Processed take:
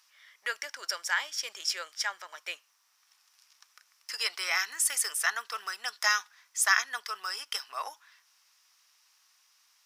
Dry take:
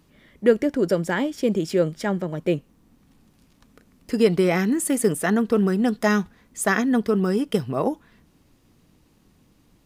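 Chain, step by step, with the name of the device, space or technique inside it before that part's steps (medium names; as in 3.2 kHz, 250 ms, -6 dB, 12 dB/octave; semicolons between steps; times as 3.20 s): headphones lying on a table (high-pass 1.1 kHz 24 dB/octave; peaking EQ 5.5 kHz +11 dB 0.42 oct)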